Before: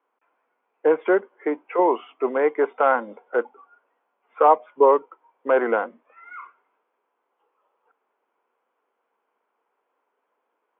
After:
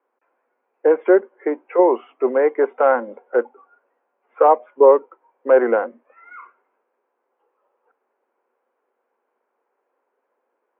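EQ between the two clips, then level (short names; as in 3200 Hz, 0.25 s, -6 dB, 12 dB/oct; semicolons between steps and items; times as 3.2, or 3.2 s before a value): speaker cabinet 190–2800 Hz, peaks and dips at 240 Hz +7 dB, 370 Hz +7 dB, 540 Hz +8 dB, 780 Hz +3 dB, 1700 Hz +4 dB; -2.0 dB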